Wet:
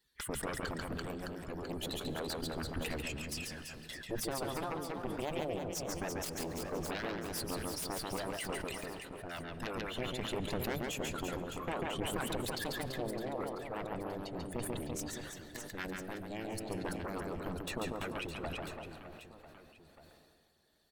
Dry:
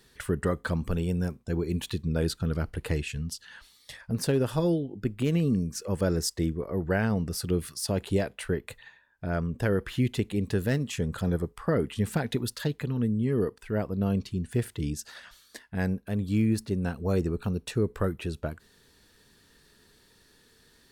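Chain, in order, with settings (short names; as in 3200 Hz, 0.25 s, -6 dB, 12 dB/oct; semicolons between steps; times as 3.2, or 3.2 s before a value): per-bin expansion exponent 1.5; compressor 2.5:1, threshold -39 dBFS, peak gain reduction 12 dB; added harmonics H 3 -7 dB, 4 -21 dB, 7 -28 dB, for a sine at -25 dBFS; bell 100 Hz -4 dB 1.4 oct; reverse bouncing-ball echo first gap 0.14 s, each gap 1.4×, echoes 5; harmonic-percussive split harmonic -11 dB; limiter -35.5 dBFS, peak gain reduction 10 dB; on a send at -15 dB: reverb RT60 4.9 s, pre-delay 80 ms; on the sum: sustainer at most 31 dB/s; gain +10 dB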